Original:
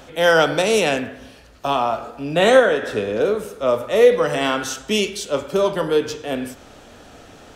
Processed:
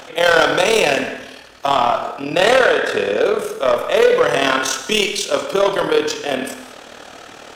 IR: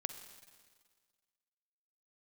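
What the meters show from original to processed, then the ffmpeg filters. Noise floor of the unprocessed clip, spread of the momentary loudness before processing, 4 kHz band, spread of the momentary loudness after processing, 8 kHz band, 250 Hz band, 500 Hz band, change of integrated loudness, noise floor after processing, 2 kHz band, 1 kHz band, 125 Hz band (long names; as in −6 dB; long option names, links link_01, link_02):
−45 dBFS, 12 LU, +5.0 dB, 9 LU, +5.0 dB, −0.5 dB, +1.5 dB, +2.5 dB, −39 dBFS, +4.5 dB, +4.5 dB, −2.5 dB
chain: -filter_complex "[0:a]asplit=2[link_01][link_02];[link_02]highpass=frequency=720:poles=1,volume=19dB,asoftclip=type=tanh:threshold=-1.5dB[link_03];[link_01][link_03]amix=inputs=2:normalize=0,lowpass=frequency=6900:poles=1,volume=-6dB,tremolo=f=38:d=0.667[link_04];[1:a]atrim=start_sample=2205,afade=type=out:start_time=0.29:duration=0.01,atrim=end_sample=13230[link_05];[link_04][link_05]afir=irnorm=-1:irlink=0"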